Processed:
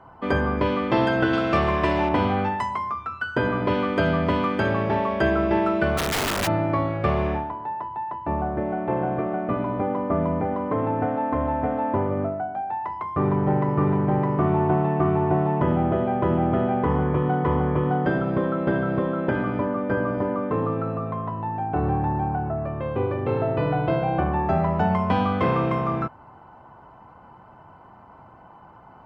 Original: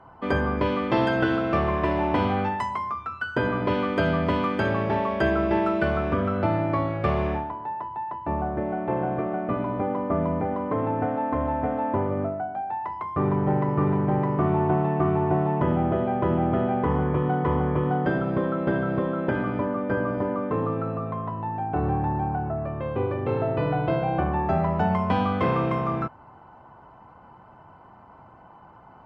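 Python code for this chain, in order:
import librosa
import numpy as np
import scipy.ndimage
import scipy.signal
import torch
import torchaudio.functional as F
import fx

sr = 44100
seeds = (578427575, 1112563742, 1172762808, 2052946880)

y = fx.high_shelf(x, sr, hz=2900.0, db=11.5, at=(1.33, 2.09))
y = fx.overflow_wrap(y, sr, gain_db=20.5, at=(5.97, 6.46), fade=0.02)
y = y * 10.0 ** (1.5 / 20.0)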